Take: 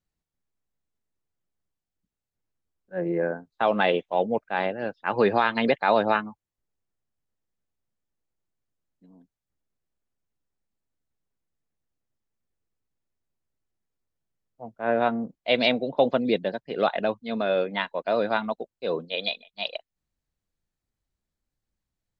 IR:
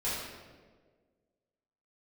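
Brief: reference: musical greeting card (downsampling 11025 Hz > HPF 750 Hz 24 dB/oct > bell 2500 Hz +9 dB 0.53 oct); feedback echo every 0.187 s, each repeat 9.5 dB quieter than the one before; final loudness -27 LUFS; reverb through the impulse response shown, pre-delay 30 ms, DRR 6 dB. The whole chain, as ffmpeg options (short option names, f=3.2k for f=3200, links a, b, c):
-filter_complex "[0:a]aecho=1:1:187|374|561|748:0.335|0.111|0.0365|0.012,asplit=2[a][b];[1:a]atrim=start_sample=2205,adelay=30[c];[b][c]afir=irnorm=-1:irlink=0,volume=-12.5dB[d];[a][d]amix=inputs=2:normalize=0,aresample=11025,aresample=44100,highpass=f=750:w=0.5412,highpass=f=750:w=1.3066,equalizer=f=2.5k:t=o:w=0.53:g=9,volume=-1.5dB"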